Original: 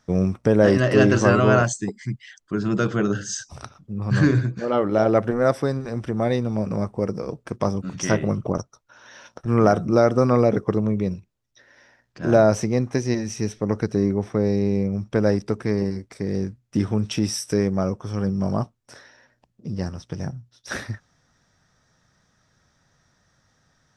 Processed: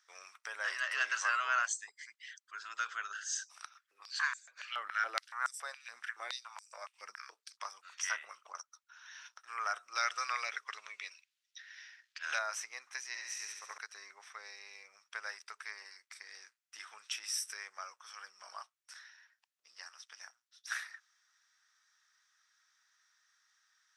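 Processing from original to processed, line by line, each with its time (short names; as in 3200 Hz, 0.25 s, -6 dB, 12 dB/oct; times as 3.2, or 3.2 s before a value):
3.63–7.61 stepped high-pass 7.1 Hz 210–7400 Hz
9.95–12.39 weighting filter D
13.07–13.78 flutter echo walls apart 11.9 m, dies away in 1 s
whole clip: HPF 1300 Hz 24 dB/oct; dynamic EQ 4400 Hz, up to -4 dB, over -46 dBFS, Q 1.1; gain -5 dB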